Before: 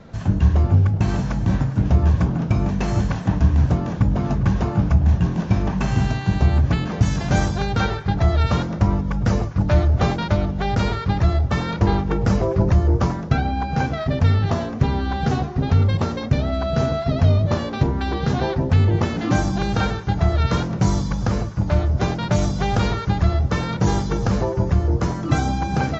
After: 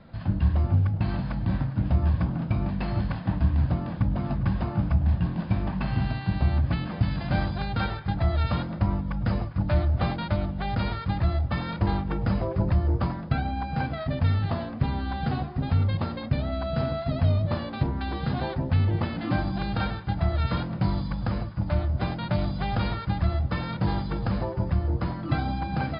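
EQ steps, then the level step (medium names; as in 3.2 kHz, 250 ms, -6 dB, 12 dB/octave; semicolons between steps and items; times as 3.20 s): brick-wall FIR low-pass 5.1 kHz; peaking EQ 420 Hz -12.5 dB 0.21 oct; -6.5 dB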